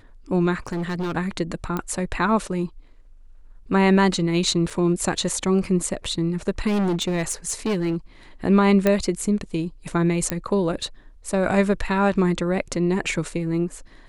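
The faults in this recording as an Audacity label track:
0.670000	1.170000	clipping −23 dBFS
1.770000	1.770000	click −13 dBFS
4.700000	4.700000	drop-out 4.7 ms
6.670000	7.960000	clipping −19 dBFS
8.870000	8.870000	click −7 dBFS
10.300000	10.300000	click −7 dBFS

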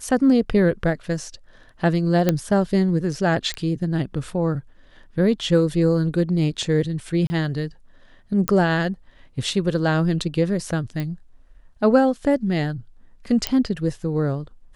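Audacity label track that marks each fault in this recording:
2.290000	2.290000	click −5 dBFS
3.540000	3.540000	click −12 dBFS
7.270000	7.300000	drop-out 30 ms
8.480000	8.480000	click −4 dBFS
11.000000	11.000000	click −16 dBFS
13.470000	13.470000	click −5 dBFS

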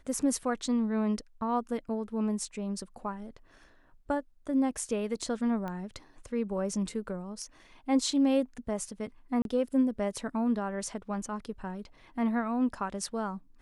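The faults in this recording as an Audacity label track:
5.680000	5.680000	click −25 dBFS
9.420000	9.450000	drop-out 32 ms

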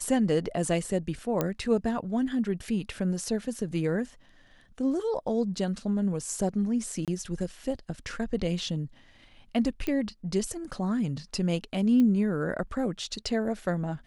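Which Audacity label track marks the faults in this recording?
1.410000	1.410000	click −12 dBFS
7.050000	7.080000	drop-out 27 ms
9.870000	9.870000	click −18 dBFS
12.000000	12.000000	click −18 dBFS

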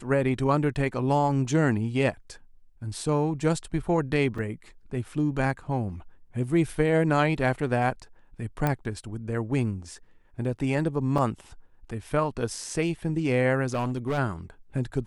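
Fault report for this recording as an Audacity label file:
4.380000	4.380000	drop-out 4.4 ms
8.670000	8.670000	click −13 dBFS
11.180000	11.180000	drop-out 3.4 ms
13.670000	14.190000	clipping −23.5 dBFS

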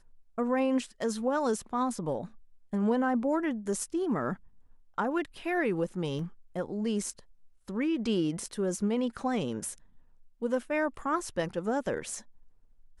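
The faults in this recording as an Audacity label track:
6.190000	6.190000	drop-out 3.6 ms

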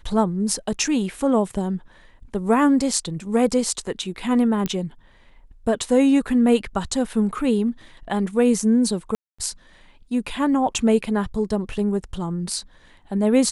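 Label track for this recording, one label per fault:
4.660000	4.660000	click −11 dBFS
9.150000	9.380000	drop-out 235 ms

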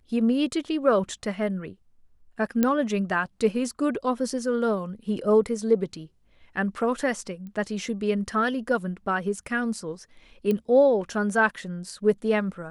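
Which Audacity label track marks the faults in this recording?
2.630000	2.630000	click −9 dBFS
7.470000	7.470000	click −30 dBFS
10.510000	10.510000	click −15 dBFS

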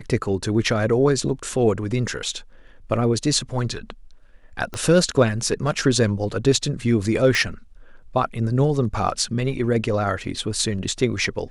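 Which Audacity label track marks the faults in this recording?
4.740000	4.740000	click −15 dBFS
7.350000	7.350000	click −8 dBFS

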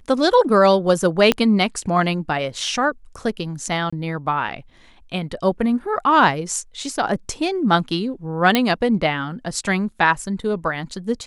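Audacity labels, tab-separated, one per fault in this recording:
1.320000	1.320000	click −3 dBFS
3.900000	3.920000	drop-out 25 ms
8.550000	8.550000	click −2 dBFS

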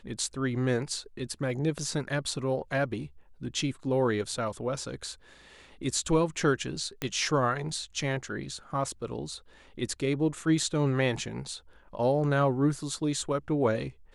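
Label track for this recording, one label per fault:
7.020000	7.020000	click −16 dBFS

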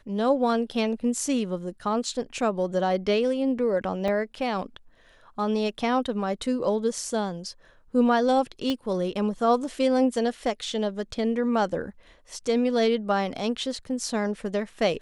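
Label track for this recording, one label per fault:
4.080000	4.080000	drop-out 3.8 ms
8.700000	8.700000	click −15 dBFS

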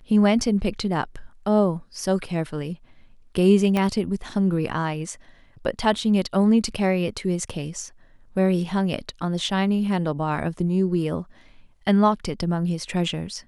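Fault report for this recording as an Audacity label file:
3.770000	3.770000	click −11 dBFS

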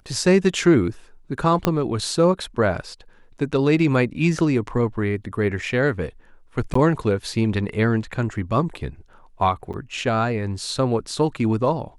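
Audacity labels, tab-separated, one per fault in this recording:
1.650000	1.650000	click −4 dBFS
6.740000	6.750000	drop-out 14 ms
9.730000	9.740000	drop-out 7.8 ms

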